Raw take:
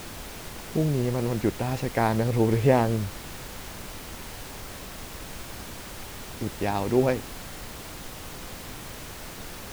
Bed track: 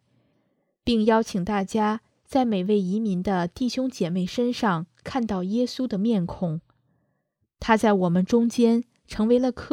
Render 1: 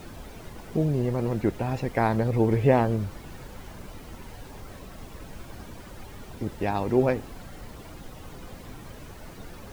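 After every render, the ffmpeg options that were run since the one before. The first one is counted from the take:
-af "afftdn=nr=11:nf=-40"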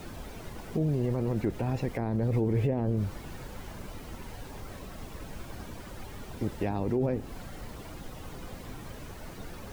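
-filter_complex "[0:a]acrossover=split=500[a][b];[b]acompressor=threshold=-36dB:ratio=6[c];[a][c]amix=inputs=2:normalize=0,alimiter=limit=-20dB:level=0:latency=1:release=17"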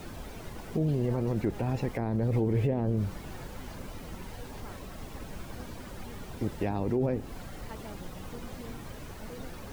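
-filter_complex "[1:a]volume=-27.5dB[a];[0:a][a]amix=inputs=2:normalize=0"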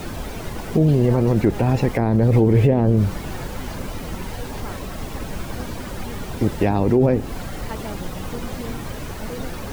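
-af "volume=12dB"

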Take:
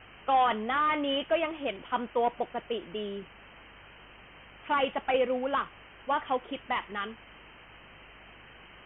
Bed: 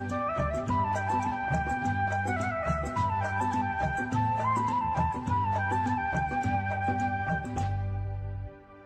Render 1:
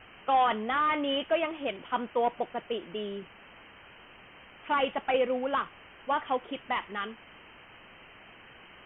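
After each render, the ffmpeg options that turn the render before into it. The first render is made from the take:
-af "bandreject=f=50:t=h:w=4,bandreject=f=100:t=h:w=4,bandreject=f=150:t=h:w=4"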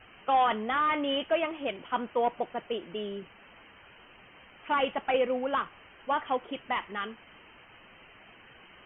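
-af "afftdn=nr=6:nf=-53"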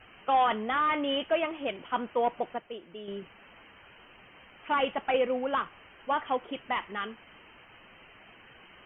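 -filter_complex "[0:a]asplit=3[a][b][c];[a]atrim=end=2.582[d];[b]atrim=start=2.578:end=3.082,asetpts=PTS-STARTPTS,volume=-7.5dB[e];[c]atrim=start=3.078[f];[d][e]acrossfade=d=0.004:c1=hsin:c2=hsin[g];[g][f]acrossfade=d=0.004:c1=hsin:c2=hsin"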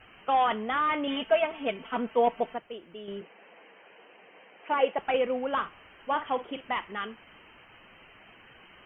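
-filter_complex "[0:a]asettb=1/sr,asplit=3[a][b][c];[a]atrim=end=1.074[d];[b]atrim=start=1.07:end=2.55,asetpts=PTS-STARTPTS,afade=t=in:d=0.004:c=qsin,afade=t=out:st=1.476:d=0.004:c=qsin,aecho=1:1:4.5:0.84,atrim=end_sample=65268[e];[c]atrim=start=2.546[f];[d][e]acrossfade=d=0.004:c1=hsin:c2=qsin[g];[g][f]acrossfade=d=0.004:c1=qsin:c2=hsin,asettb=1/sr,asplit=3[h][i][j];[h]atrim=end=3.214[k];[i]atrim=start=3.21:end=4.99,asetpts=PTS-STARTPTS,afade=t=in:d=0.004:c=qsin,afade=t=out:st=1.776:d=0.004:c=qsin,highpass=f=200:w=0.5412,highpass=f=200:w=1.3066,equalizer=f=250:t=q:w=4:g=-5,equalizer=f=470:t=q:w=4:g=8,equalizer=f=710:t=q:w=4:g=4,equalizer=f=1.3k:t=q:w=4:g=-5,lowpass=f=2.9k:w=0.5412,lowpass=f=2.9k:w=1.3066[l];[j]atrim=start=4.986[m];[k][l]acrossfade=d=0.004:c1=hsin:c2=qsin[n];[n][m]acrossfade=d=0.004:c1=qsin:c2=hsin,asettb=1/sr,asplit=3[o][p][q];[o]atrim=end=5.524[r];[p]atrim=start=5.52:end=6.73,asetpts=PTS-STARTPTS,afade=t=in:d=0.004:c=qsin,afade=t=out:st=1.206:d=0.004:c=qsin,asplit=2[s][t];[t]adelay=48,volume=-12dB[u];[s][u]amix=inputs=2:normalize=0,atrim=end_sample=53361[v];[q]atrim=start=6.726[w];[r][v]acrossfade=d=0.004:c1=hsin:c2=qsin[x];[x][w]acrossfade=d=0.004:c1=qsin:c2=hsin"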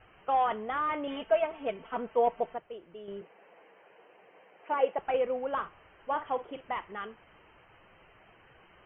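-af "lowpass=f=1k:p=1,equalizer=f=240:w=2.1:g=-8.5"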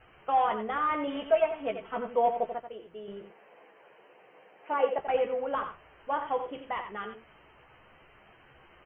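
-filter_complex "[0:a]asplit=2[a][b];[b]adelay=14,volume=-7dB[c];[a][c]amix=inputs=2:normalize=0,aecho=1:1:88:0.376"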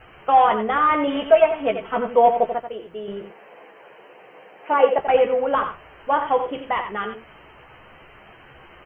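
-af "volume=10.5dB,alimiter=limit=-3dB:level=0:latency=1"

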